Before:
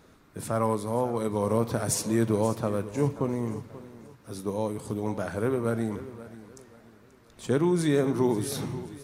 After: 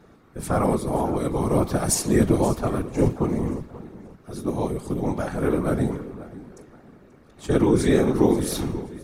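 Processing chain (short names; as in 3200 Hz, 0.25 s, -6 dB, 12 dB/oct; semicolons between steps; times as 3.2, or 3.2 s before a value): notch comb 500 Hz; whisperiser; mismatched tape noise reduction decoder only; gain +6 dB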